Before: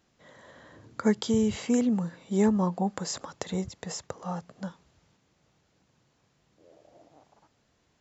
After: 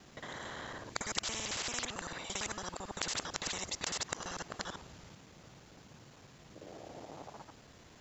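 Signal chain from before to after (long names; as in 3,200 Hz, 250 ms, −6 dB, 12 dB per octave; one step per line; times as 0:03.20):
reversed piece by piece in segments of 56 ms
every bin compressed towards the loudest bin 10 to 1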